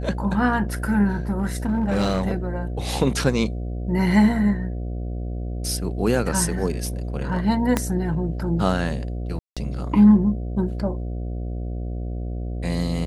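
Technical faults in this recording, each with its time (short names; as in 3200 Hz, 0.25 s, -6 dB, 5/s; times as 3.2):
buzz 60 Hz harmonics 12 -28 dBFS
1.3–2.34 clipped -16.5 dBFS
7.77 pop -6 dBFS
9.39–9.57 gap 0.176 s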